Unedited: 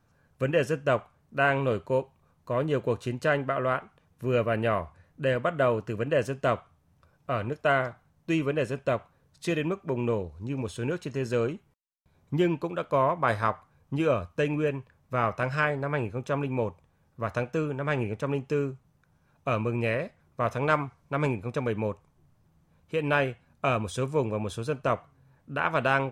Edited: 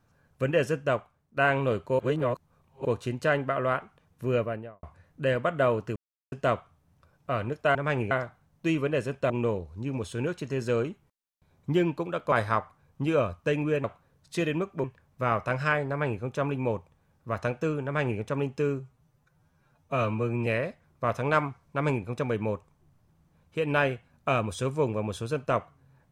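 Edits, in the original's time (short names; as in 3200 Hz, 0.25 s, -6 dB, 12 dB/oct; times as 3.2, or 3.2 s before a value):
0.77–1.37 fade out, to -12 dB
1.99–2.85 reverse
4.24–4.83 studio fade out
5.96–6.32 mute
8.94–9.94 move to 14.76
12.96–13.24 cut
17.76–18.12 copy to 7.75
18.72–19.83 stretch 1.5×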